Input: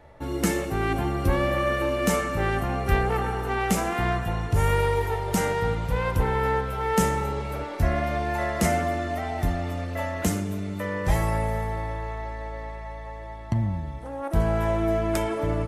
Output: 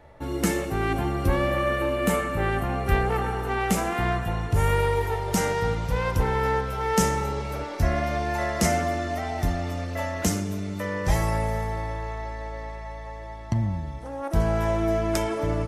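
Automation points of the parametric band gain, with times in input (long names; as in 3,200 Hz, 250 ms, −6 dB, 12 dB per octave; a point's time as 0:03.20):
parametric band 5,600 Hz 0.68 octaves
0:01.33 0 dB
0:02.16 −9.5 dB
0:03.08 −0.5 dB
0:04.90 −0.5 dB
0:05.63 +7 dB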